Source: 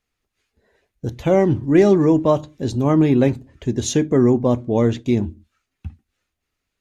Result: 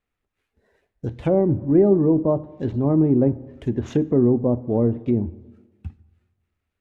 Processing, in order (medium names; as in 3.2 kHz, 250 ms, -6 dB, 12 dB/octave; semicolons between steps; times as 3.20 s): median filter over 9 samples; low-pass that closes with the level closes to 660 Hz, closed at -14 dBFS; plate-style reverb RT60 1.4 s, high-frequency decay 0.6×, DRR 17.5 dB; trim -2 dB